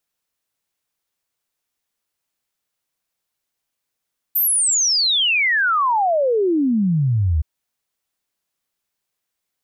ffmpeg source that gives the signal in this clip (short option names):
-f lavfi -i "aevalsrc='0.188*clip(min(t,3.07-t)/0.01,0,1)*sin(2*PI*14000*3.07/log(72/14000)*(exp(log(72/14000)*t/3.07)-1))':d=3.07:s=44100"